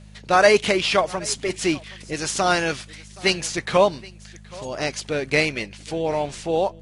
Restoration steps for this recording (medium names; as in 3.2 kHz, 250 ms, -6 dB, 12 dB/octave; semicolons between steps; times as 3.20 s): de-hum 51.7 Hz, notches 4; inverse comb 773 ms -22.5 dB